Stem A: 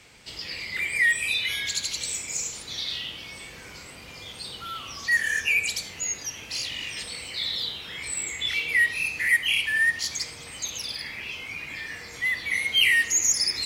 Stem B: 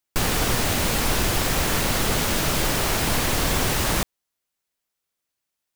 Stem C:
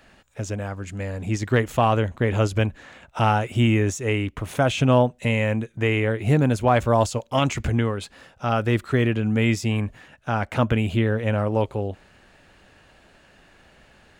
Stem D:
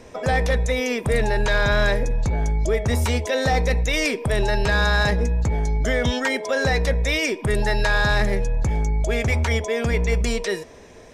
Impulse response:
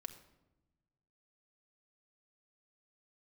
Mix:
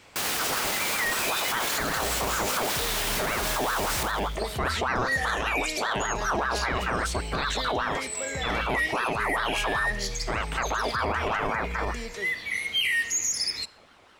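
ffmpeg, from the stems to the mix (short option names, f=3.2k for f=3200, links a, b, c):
-filter_complex "[0:a]volume=-6.5dB,asplit=2[a][b];[b]volume=-3dB[c];[1:a]highpass=f=800:p=1,volume=-2dB,asplit=2[d][e];[e]volume=-9dB[f];[2:a]aeval=exprs='val(0)*sin(2*PI*970*n/s+970*0.5/5.1*sin(2*PI*5.1*n/s))':c=same,volume=-0.5dB,asplit=2[g][h];[h]volume=-11.5dB[i];[3:a]adelay=1700,volume=-13dB[j];[4:a]atrim=start_sample=2205[k];[c][i]amix=inputs=2:normalize=0[l];[l][k]afir=irnorm=-1:irlink=0[m];[f]aecho=0:1:83|166|249|332|415|498|581:1|0.51|0.26|0.133|0.0677|0.0345|0.0176[n];[a][d][g][j][m][n]amix=inputs=6:normalize=0,alimiter=limit=-18dB:level=0:latency=1:release=16"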